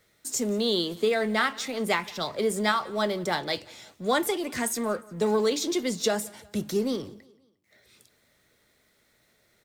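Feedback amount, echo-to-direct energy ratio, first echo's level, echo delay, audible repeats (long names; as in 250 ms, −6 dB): 47%, −22.5 dB, −23.5 dB, 177 ms, 2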